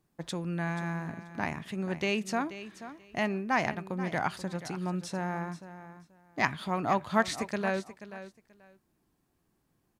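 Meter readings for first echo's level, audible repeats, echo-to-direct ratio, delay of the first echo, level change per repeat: −13.5 dB, 2, −13.5 dB, 483 ms, −14.5 dB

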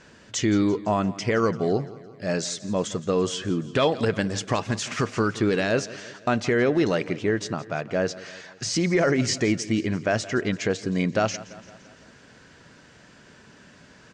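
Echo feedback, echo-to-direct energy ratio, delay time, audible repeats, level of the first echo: 57%, −16.5 dB, 170 ms, 4, −18.0 dB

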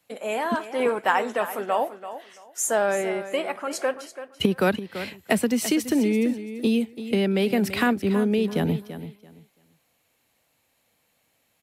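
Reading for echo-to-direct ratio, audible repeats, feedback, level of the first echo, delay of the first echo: −12.5 dB, 2, 21%, −12.5 dB, 336 ms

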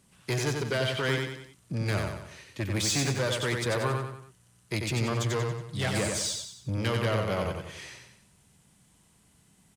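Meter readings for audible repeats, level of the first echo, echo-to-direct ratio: 4, −4.0 dB, −3.0 dB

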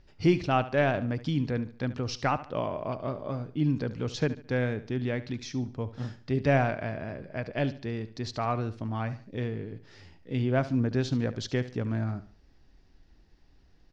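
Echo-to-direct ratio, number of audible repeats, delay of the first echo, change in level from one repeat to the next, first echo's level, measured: −14.5 dB, 3, 72 ms, −9.0 dB, −15.0 dB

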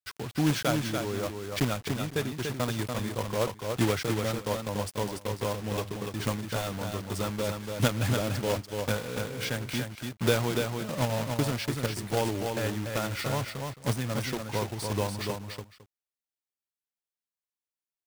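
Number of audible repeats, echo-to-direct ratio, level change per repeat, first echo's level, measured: 2, −5.0 dB, repeats not evenly spaced, −5.0 dB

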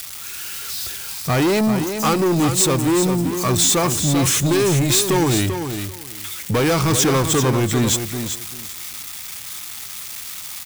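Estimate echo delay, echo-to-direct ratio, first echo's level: 390 ms, −8.0 dB, −8.0 dB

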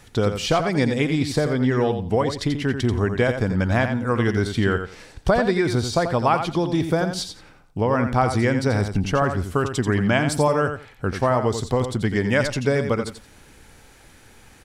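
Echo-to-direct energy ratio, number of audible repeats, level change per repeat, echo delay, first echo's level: −8.0 dB, 2, −15.0 dB, 87 ms, −8.0 dB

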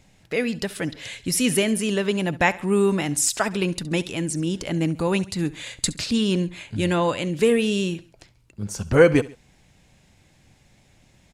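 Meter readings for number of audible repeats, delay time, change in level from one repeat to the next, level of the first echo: 2, 68 ms, −6.5 dB, −19.0 dB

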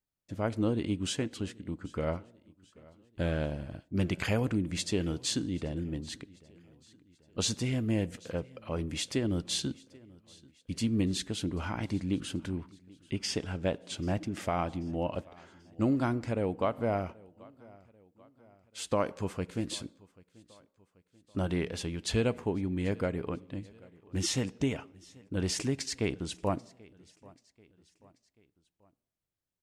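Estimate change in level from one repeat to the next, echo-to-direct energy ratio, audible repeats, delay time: −6.0 dB, −23.0 dB, 2, 786 ms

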